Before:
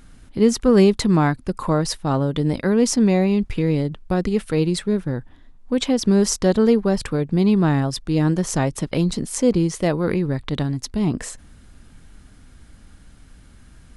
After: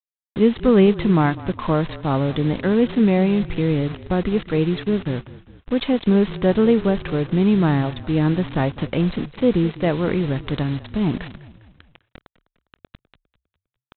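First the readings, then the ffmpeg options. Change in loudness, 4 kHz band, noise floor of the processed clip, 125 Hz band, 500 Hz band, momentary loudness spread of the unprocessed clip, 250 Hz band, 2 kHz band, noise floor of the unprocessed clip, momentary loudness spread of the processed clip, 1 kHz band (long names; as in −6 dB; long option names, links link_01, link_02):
0.0 dB, −3.5 dB, below −85 dBFS, 0.0 dB, 0.0 dB, 8 LU, 0.0 dB, +1.0 dB, −48 dBFS, 8 LU, +0.5 dB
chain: -filter_complex "[0:a]aresample=8000,acrusher=bits=5:mix=0:aa=0.000001,aresample=44100,asplit=5[link_01][link_02][link_03][link_04][link_05];[link_02]adelay=202,afreqshift=-33,volume=-17.5dB[link_06];[link_03]adelay=404,afreqshift=-66,volume=-23.3dB[link_07];[link_04]adelay=606,afreqshift=-99,volume=-29.2dB[link_08];[link_05]adelay=808,afreqshift=-132,volume=-35dB[link_09];[link_01][link_06][link_07][link_08][link_09]amix=inputs=5:normalize=0"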